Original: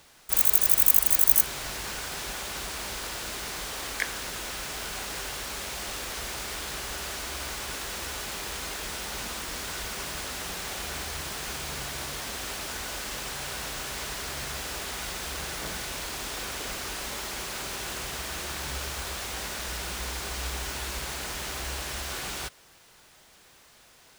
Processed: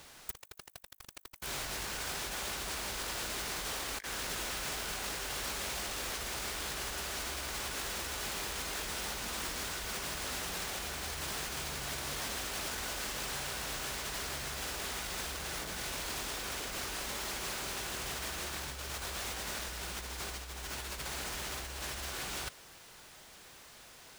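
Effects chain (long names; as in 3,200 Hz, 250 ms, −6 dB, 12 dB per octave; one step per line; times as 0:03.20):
compressor whose output falls as the input rises −37 dBFS, ratio −0.5
level −3 dB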